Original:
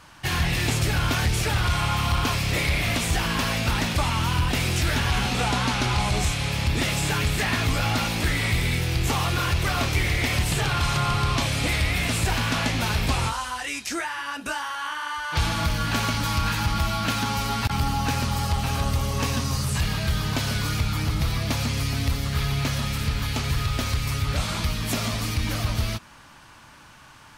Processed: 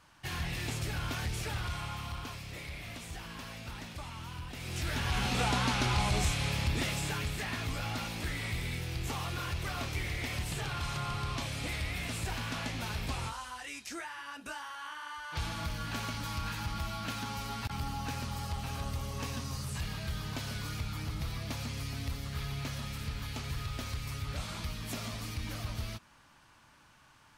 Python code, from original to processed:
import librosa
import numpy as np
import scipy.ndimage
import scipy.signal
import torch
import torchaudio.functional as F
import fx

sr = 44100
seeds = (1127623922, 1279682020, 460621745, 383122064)

y = fx.gain(x, sr, db=fx.line((1.53, -12.5), (2.48, -19.5), (4.56, -19.5), (4.77, -12.5), (5.35, -6.0), (6.48, -6.0), (7.4, -12.5)))